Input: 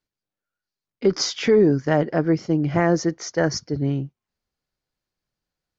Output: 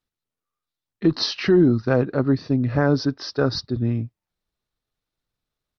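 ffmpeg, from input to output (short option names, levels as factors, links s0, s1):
-af "lowshelf=f=72:g=3.5,asetrate=37084,aresample=44100,atempo=1.18921"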